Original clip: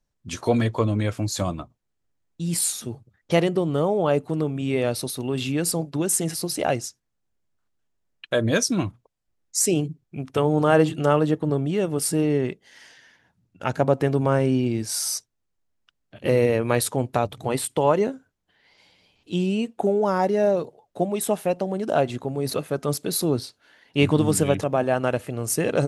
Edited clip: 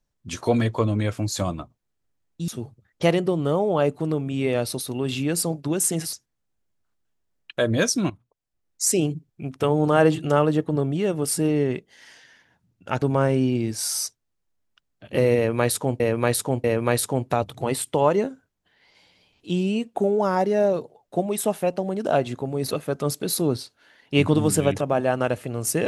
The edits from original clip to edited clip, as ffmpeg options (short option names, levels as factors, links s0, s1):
-filter_complex "[0:a]asplit=7[s0][s1][s2][s3][s4][s5][s6];[s0]atrim=end=2.482[s7];[s1]atrim=start=2.768:end=6.422[s8];[s2]atrim=start=6.868:end=8.84,asetpts=PTS-STARTPTS,afade=t=out:st=1.968:d=0.004:c=hsin:silence=0.158489[s9];[s3]atrim=start=8.84:end=13.762,asetpts=PTS-STARTPTS,afade=t=in:d=0.72:silence=0.158489[s10];[s4]atrim=start=14.128:end=17.112[s11];[s5]atrim=start=16.468:end=17.112[s12];[s6]atrim=start=16.468[s13];[s7][s8]acrossfade=d=0.004:c1=hsin:c2=hsin[s14];[s9][s10]concat=n=2:v=0:a=1[s15];[s14][s15]acrossfade=d=0.004:c1=hsin:c2=hsin[s16];[s16][s11]acrossfade=d=0.004:c1=hsin:c2=hsin[s17];[s17][s12]acrossfade=d=0.004:c1=hsin:c2=hsin[s18];[s18][s13]acrossfade=d=0.004:c1=hsin:c2=hsin"